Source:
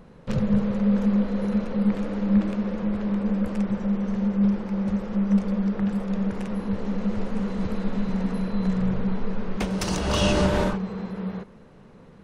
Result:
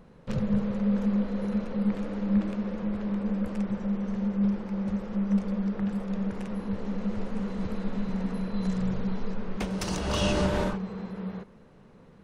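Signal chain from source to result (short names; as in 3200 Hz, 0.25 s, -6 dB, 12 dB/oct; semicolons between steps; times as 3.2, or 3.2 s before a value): 8.54–9.34 tone controls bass 0 dB, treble +9 dB; gain -4.5 dB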